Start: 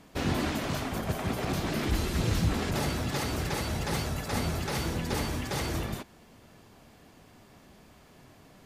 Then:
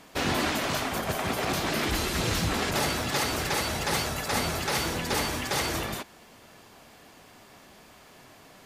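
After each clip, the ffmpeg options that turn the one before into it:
-af "lowshelf=f=330:g=-11.5,volume=7dB"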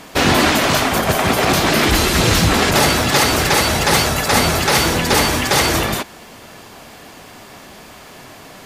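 -af "acontrast=80,volume=6.5dB"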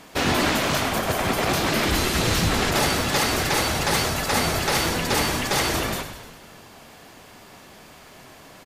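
-filter_complex "[0:a]asplit=8[a][b][c][d][e][f][g][h];[b]adelay=101,afreqshift=-54,volume=-10dB[i];[c]adelay=202,afreqshift=-108,volume=-14.6dB[j];[d]adelay=303,afreqshift=-162,volume=-19.2dB[k];[e]adelay=404,afreqshift=-216,volume=-23.7dB[l];[f]adelay=505,afreqshift=-270,volume=-28.3dB[m];[g]adelay=606,afreqshift=-324,volume=-32.9dB[n];[h]adelay=707,afreqshift=-378,volume=-37.5dB[o];[a][i][j][k][l][m][n][o]amix=inputs=8:normalize=0,volume=-8dB"

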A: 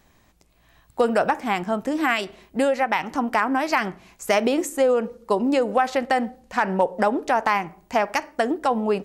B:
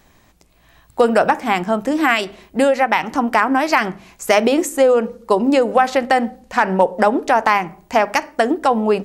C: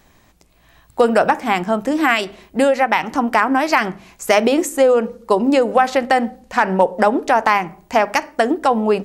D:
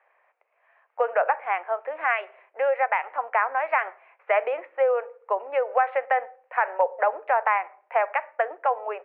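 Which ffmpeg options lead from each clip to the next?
-af "bandreject=f=50:t=h:w=6,bandreject=f=100:t=h:w=6,bandreject=f=150:t=h:w=6,bandreject=f=200:t=h:w=6,bandreject=f=250:t=h:w=6,volume=6dB"
-af anull
-af "asuperpass=centerf=1100:order=12:qfactor=0.56,volume=-7dB"

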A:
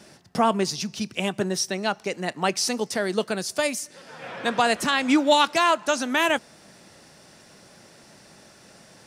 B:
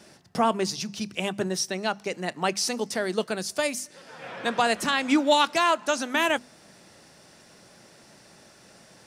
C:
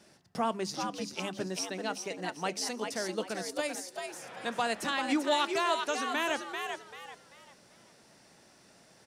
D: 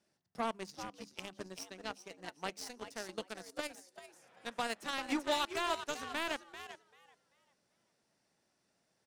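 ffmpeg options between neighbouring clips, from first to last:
-af "bandreject=f=50:t=h:w=6,bandreject=f=100:t=h:w=6,bandreject=f=150:t=h:w=6,bandreject=f=200:t=h:w=6,bandreject=f=250:t=h:w=6,volume=-2dB"
-filter_complex "[0:a]asplit=5[a][b][c][d][e];[b]adelay=390,afreqshift=86,volume=-5.5dB[f];[c]adelay=780,afreqshift=172,volume=-15.7dB[g];[d]adelay=1170,afreqshift=258,volume=-25.8dB[h];[e]adelay=1560,afreqshift=344,volume=-36dB[i];[a][f][g][h][i]amix=inputs=5:normalize=0,volume=-8dB"
-af "aeval=exprs='0.158*(cos(1*acos(clip(val(0)/0.158,-1,1)))-cos(1*PI/2))+0.00562*(cos(3*acos(clip(val(0)/0.158,-1,1)))-cos(3*PI/2))+0.0158*(cos(7*acos(clip(val(0)/0.158,-1,1)))-cos(7*PI/2))':c=same,volume=-4.5dB"

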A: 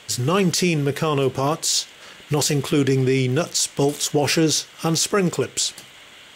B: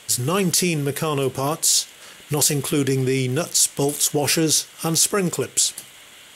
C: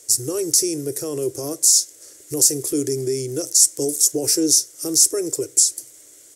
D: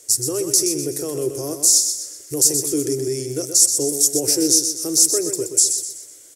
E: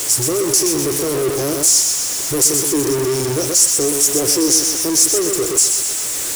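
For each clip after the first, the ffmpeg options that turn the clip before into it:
-af "equalizer=f=11k:w=1:g=14.5,volume=-2dB"
-af "firequalizer=gain_entry='entry(140,0);entry(200,-23);entry(300,11);entry(590,3);entry(840,-9);entry(1900,-6);entry(3000,-13);entry(5400,13);entry(8200,13);entry(12000,10)':delay=0.05:min_phase=1,volume=-8.5dB"
-af "aecho=1:1:125|250|375|500|625:0.422|0.173|0.0709|0.0291|0.0119"
-af "aeval=exprs='val(0)+0.5*0.168*sgn(val(0))':c=same,volume=-1dB"

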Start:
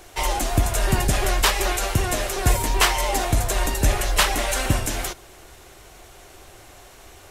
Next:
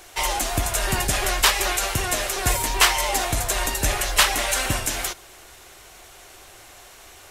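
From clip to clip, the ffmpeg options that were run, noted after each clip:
-af "tiltshelf=f=640:g=-4.5,volume=-1.5dB"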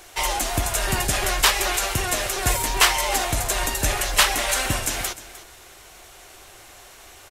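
-af "aecho=1:1:305:0.158"

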